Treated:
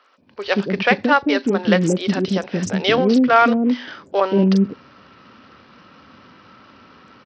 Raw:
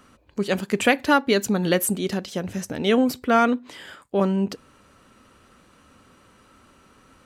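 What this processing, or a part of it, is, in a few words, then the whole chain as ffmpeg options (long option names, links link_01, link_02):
Bluetooth headset: -filter_complex "[0:a]asettb=1/sr,asplit=3[link_01][link_02][link_03];[link_01]atrim=end=0.614[link_04];[link_02]atrim=start=0.61:end=1.8,asetpts=PTS-STARTPTS,afade=type=in:duration=0.004:curve=qsin,afade=type=out:start_time=1.186:duration=0.004:curve=qsin,acrossover=split=3500[link_05][link_06];[link_06]acompressor=threshold=-46dB:ratio=4:attack=1:release=60[link_07];[link_05][link_07]amix=inputs=2:normalize=0[link_08];[link_03]atrim=start=1.796[link_09];[link_04][link_08]acrossfade=duration=0.004:curve1=hsin:curve2=qsin[link_10];[link_10][link_09]acrossfade=duration=0.004:curve1=qsin:curve2=hsin,highpass=120,acrossover=split=440|5100[link_11][link_12][link_13];[link_13]adelay=40[link_14];[link_11]adelay=180[link_15];[link_15][link_12][link_14]amix=inputs=3:normalize=0,dynaudnorm=framelen=240:gausssize=3:maxgain=9dB,aresample=16000,aresample=44100" -ar 44100 -c:a sbc -b:a 64k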